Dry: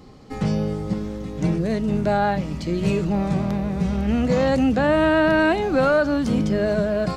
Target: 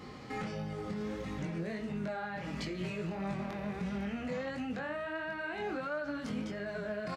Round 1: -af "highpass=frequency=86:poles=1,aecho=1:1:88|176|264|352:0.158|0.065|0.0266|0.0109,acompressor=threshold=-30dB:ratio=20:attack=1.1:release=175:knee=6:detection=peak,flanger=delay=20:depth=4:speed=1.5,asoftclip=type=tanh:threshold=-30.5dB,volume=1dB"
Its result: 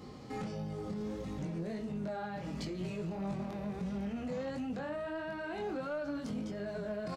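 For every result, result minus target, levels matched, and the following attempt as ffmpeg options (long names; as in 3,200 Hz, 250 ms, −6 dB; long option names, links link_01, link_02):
soft clipping: distortion +20 dB; 2,000 Hz band −5.5 dB
-af "highpass=frequency=86:poles=1,aecho=1:1:88|176|264|352:0.158|0.065|0.0266|0.0109,acompressor=threshold=-30dB:ratio=20:attack=1.1:release=175:knee=6:detection=peak,flanger=delay=20:depth=4:speed=1.5,asoftclip=type=tanh:threshold=-19.5dB,volume=1dB"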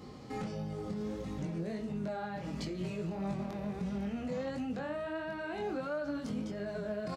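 2,000 Hz band −5.5 dB
-af "highpass=frequency=86:poles=1,equalizer=frequency=1900:width_type=o:width=1.7:gain=9,aecho=1:1:88|176|264|352:0.158|0.065|0.0266|0.0109,acompressor=threshold=-30dB:ratio=20:attack=1.1:release=175:knee=6:detection=peak,flanger=delay=20:depth=4:speed=1.5,asoftclip=type=tanh:threshold=-19.5dB,volume=1dB"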